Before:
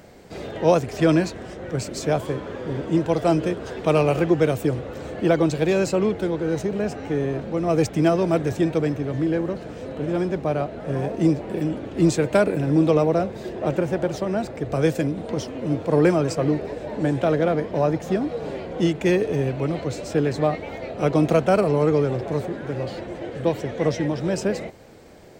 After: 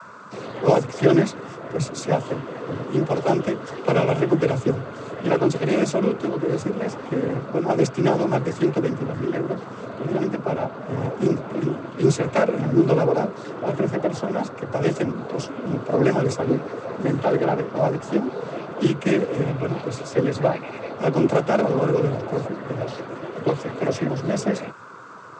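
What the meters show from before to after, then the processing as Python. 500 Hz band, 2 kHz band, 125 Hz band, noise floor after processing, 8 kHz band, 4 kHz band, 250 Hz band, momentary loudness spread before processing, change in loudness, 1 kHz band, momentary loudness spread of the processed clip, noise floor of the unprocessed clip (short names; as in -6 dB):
0.0 dB, +0.5 dB, -0.5 dB, -37 dBFS, -1.0 dB, -0.5 dB, -1.0 dB, 10 LU, -0.5 dB, +1.5 dB, 10 LU, -36 dBFS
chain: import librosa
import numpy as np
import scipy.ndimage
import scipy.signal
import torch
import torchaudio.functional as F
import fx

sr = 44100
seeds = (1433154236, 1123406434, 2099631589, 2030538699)

y = fx.noise_vocoder(x, sr, seeds[0], bands=16)
y = fx.doubler(y, sr, ms=15.0, db=-14.0)
y = fx.dmg_noise_band(y, sr, seeds[1], low_hz=950.0, high_hz=1500.0, level_db=-43.0)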